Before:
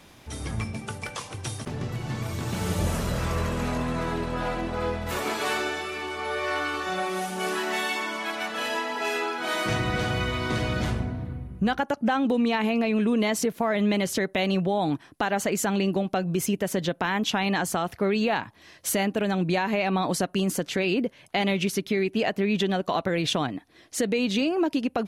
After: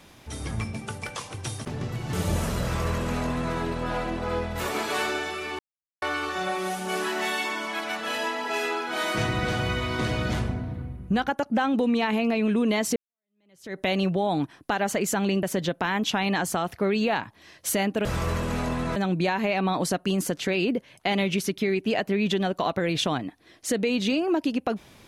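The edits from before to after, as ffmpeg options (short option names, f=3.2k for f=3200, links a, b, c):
-filter_complex "[0:a]asplit=8[a][b][c][d][e][f][g][h];[a]atrim=end=2.132[i];[b]atrim=start=2.638:end=6.1,asetpts=PTS-STARTPTS,afade=t=out:st=3.458:d=0.004:c=hsin[j];[c]atrim=start=6.1:end=6.53,asetpts=PTS-STARTPTS,volume=0[k];[d]atrim=start=6.53:end=13.47,asetpts=PTS-STARTPTS,afade=t=in:d=0.004:c=hsin,afade=t=out:st=6.936:d=0.004:c=hsin[l];[e]atrim=start=13.47:end=15.942,asetpts=PTS-STARTPTS,afade=t=in:d=0.83:c=exp[m];[f]atrim=start=16.628:end=19.252[n];[g]atrim=start=3.138:end=4.052[o];[h]atrim=start=19.248[p];[j][k][l][m]concat=n=4:v=0:a=1[q];[i][q]acrossfade=d=0.004:c1=hsin:c2=hsin[r];[r][n]acrossfade=d=0.004:c1=hsin:c2=hsin[s];[s][o]acrossfade=d=0.004:c1=hsin:c2=hsin[t];[t][p]acrossfade=d=0.004:c1=hsin:c2=hsin"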